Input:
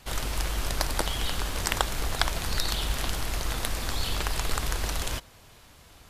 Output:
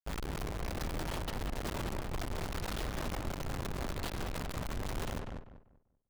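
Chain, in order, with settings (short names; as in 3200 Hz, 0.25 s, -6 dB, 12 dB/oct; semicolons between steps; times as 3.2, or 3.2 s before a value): Schmitt trigger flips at -31 dBFS; darkening echo 0.194 s, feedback 28%, low-pass 1700 Hz, level -3.5 dB; gain -8 dB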